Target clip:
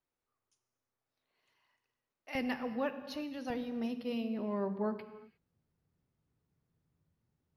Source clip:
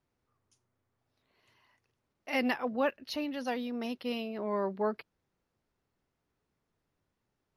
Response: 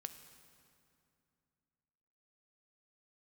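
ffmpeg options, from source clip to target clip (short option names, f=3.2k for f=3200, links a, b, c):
-filter_complex "[0:a]asetnsamples=n=441:p=0,asendcmd='2.35 equalizer g 6.5;3.5 equalizer g 13.5',equalizer=f=110:t=o:w=2.6:g=-10.5[a];[1:a]atrim=start_sample=2205,afade=t=out:st=0.42:d=0.01,atrim=end_sample=18963[b];[a][b]afir=irnorm=-1:irlink=0,volume=-3dB"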